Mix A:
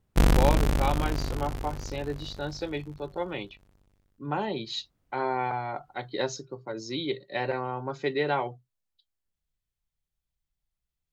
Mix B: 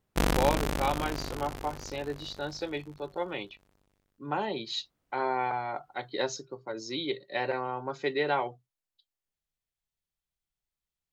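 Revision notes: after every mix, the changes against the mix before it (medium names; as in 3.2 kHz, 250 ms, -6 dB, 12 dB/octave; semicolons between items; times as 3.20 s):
master: add bass shelf 170 Hz -11 dB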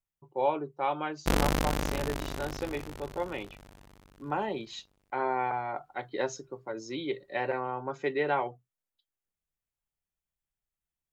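speech: add peaking EQ 4.3 kHz -11.5 dB 0.69 oct; background: entry +1.10 s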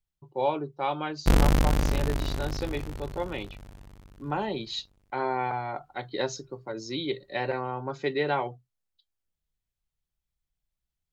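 speech: add peaking EQ 4.3 kHz +11.5 dB 0.69 oct; master: add bass shelf 170 Hz +11 dB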